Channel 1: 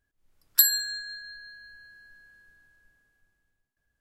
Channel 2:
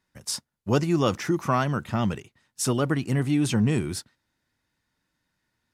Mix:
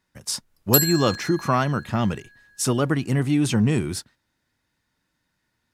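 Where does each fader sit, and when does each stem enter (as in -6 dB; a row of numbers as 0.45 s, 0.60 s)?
+0.5 dB, +2.5 dB; 0.15 s, 0.00 s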